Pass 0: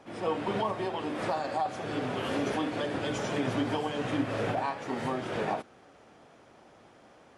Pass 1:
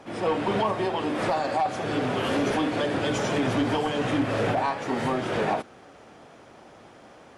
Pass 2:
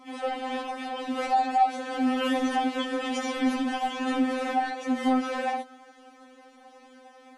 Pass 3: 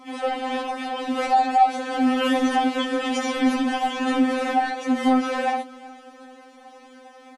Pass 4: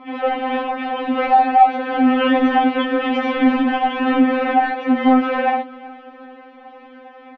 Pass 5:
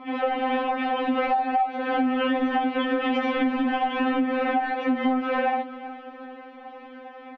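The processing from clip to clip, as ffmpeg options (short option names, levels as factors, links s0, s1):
-af "aeval=exprs='0.126*sin(PI/2*1.41*val(0)/0.126)':c=same"
-af "afftfilt=real='re*3.46*eq(mod(b,12),0)':imag='im*3.46*eq(mod(b,12),0)':win_size=2048:overlap=0.75"
-af "aecho=1:1:379|758|1137:0.0794|0.0365|0.0168,volume=1.78"
-af "lowpass=f=2900:w=0.5412,lowpass=f=2900:w=1.3066,volume=1.88"
-af "acompressor=threshold=0.112:ratio=12,volume=0.891"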